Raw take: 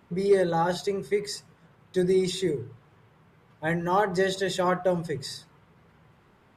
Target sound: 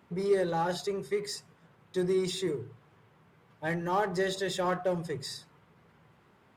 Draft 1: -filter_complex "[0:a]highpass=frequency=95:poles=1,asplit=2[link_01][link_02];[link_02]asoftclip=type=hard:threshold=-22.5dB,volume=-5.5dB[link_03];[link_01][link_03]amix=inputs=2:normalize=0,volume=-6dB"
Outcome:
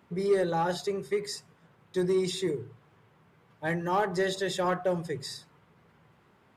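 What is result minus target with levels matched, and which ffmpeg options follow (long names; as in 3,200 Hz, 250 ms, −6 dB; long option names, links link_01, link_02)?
hard clipping: distortion −7 dB
-filter_complex "[0:a]highpass=frequency=95:poles=1,asplit=2[link_01][link_02];[link_02]asoftclip=type=hard:threshold=-32.5dB,volume=-5.5dB[link_03];[link_01][link_03]amix=inputs=2:normalize=0,volume=-6dB"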